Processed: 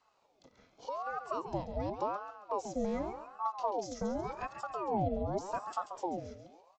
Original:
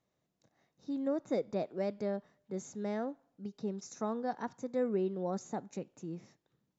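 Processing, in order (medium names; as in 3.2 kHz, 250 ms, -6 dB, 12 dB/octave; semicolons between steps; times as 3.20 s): low-pass 5.8 kHz 24 dB/octave; treble shelf 2.6 kHz +11.5 dB; band-stop 1.5 kHz, Q 6.9; in parallel at -2.5 dB: peak limiter -32 dBFS, peak gain reduction 11 dB; on the sum: compression 2:1, threshold -48 dBFS, peak gain reduction 12.5 dB; small resonant body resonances 210/350/1700/3100 Hz, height 14 dB, ringing for 45 ms; frequency shift -80 Hz; on a send: feedback delay 137 ms, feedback 45%, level -9 dB; on the sum: ring modulator with a swept carrier 670 Hz, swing 50%, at 0.87 Hz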